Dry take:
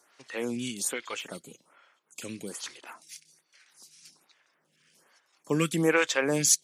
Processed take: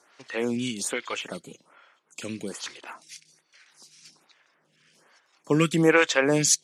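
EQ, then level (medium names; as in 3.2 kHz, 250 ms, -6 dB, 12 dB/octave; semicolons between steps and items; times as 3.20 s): distance through air 50 m; +5.0 dB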